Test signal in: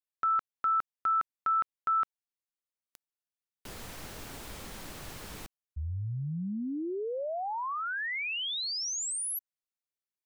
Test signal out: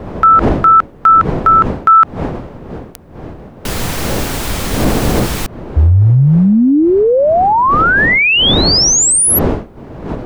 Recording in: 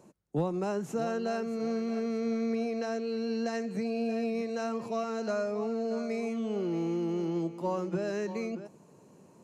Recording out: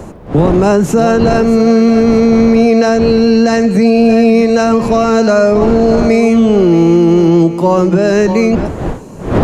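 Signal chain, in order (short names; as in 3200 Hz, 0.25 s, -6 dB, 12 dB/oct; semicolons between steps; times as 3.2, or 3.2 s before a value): wind noise 470 Hz -44 dBFS; low shelf 210 Hz +4 dB; maximiser +24.5 dB; gain -1 dB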